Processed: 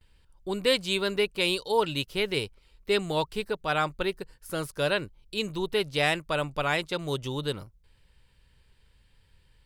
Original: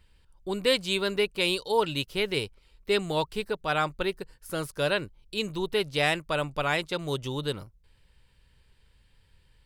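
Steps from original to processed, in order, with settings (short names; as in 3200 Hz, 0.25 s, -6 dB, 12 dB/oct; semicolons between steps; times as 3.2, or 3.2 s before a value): gate with hold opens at -54 dBFS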